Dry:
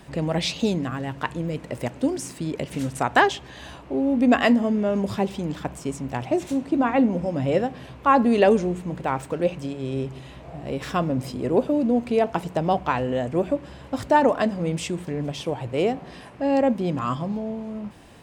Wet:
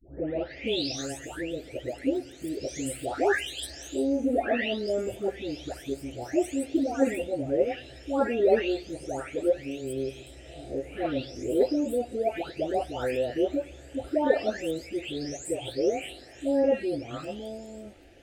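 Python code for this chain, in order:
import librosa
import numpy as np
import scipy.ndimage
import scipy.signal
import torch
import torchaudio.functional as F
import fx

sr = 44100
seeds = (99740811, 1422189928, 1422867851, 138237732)

y = fx.spec_delay(x, sr, highs='late', ms=674)
y = fx.fixed_phaser(y, sr, hz=430.0, stages=4)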